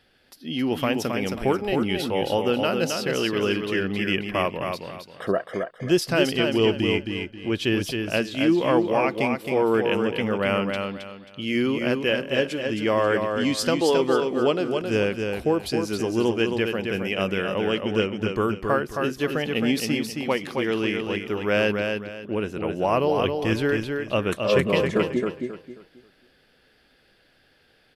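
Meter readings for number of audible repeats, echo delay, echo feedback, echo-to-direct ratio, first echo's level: 3, 0.268 s, 29%, -4.5 dB, -5.0 dB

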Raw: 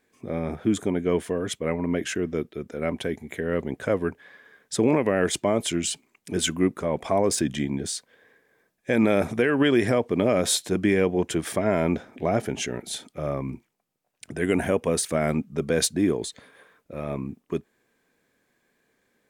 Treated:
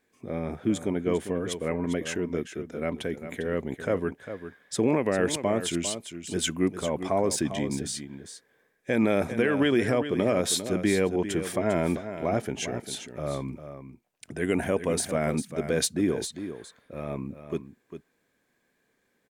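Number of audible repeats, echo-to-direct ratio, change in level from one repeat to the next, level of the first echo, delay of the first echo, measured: 1, -10.5 dB, no steady repeat, -10.5 dB, 0.4 s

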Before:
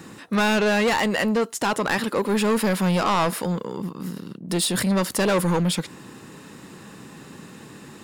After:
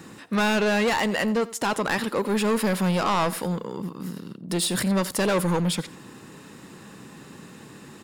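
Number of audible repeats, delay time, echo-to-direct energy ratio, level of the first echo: 2, 87 ms, -19.0 dB, -19.0 dB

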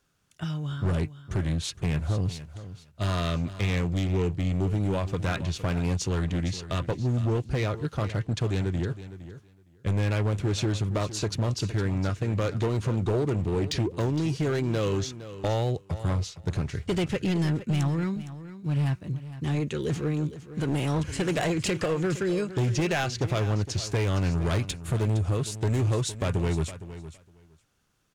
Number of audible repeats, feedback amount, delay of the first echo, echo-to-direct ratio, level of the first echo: 2, 15%, 0.462 s, -14.0 dB, -14.0 dB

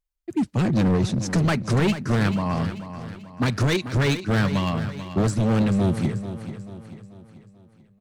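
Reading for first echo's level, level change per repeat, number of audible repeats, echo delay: -11.5 dB, -6.5 dB, 4, 0.438 s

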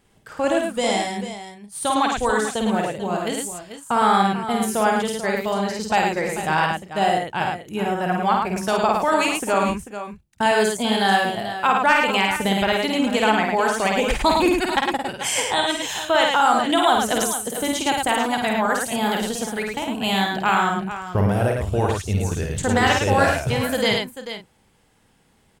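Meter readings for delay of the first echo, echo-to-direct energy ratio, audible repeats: 51 ms, -0.5 dB, 4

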